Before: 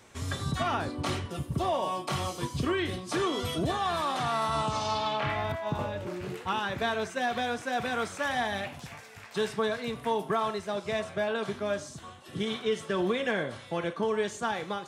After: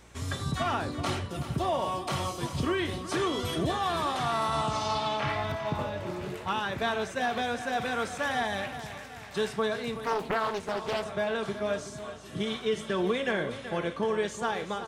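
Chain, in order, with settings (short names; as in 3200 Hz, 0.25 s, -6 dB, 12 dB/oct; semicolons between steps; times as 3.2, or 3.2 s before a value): hum 60 Hz, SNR 27 dB; feedback echo 0.376 s, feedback 47%, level -12 dB; 10.04–11.05 Doppler distortion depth 0.9 ms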